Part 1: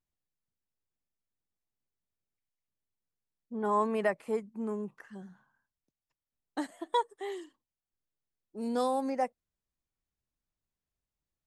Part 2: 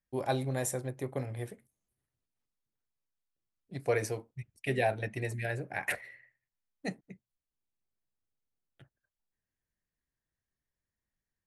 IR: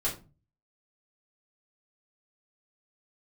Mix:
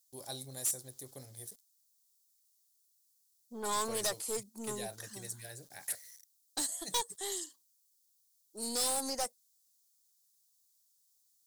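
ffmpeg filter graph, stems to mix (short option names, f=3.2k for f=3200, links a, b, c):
-filter_complex "[0:a]highpass=f=380:p=1,aeval=exprs='0.15*(cos(1*acos(clip(val(0)/0.15,-1,1)))-cos(1*PI/2))+0.0188*(cos(6*acos(clip(val(0)/0.15,-1,1)))-cos(6*PI/2))':c=same,volume=-2dB[a];[1:a]aeval=exprs='val(0)*gte(abs(val(0)),0.002)':c=same,volume=-15.5dB[b];[a][b]amix=inputs=2:normalize=0,aexciter=amount=12.6:drive=6.2:freq=3.8k,asoftclip=type=tanh:threshold=-27.5dB"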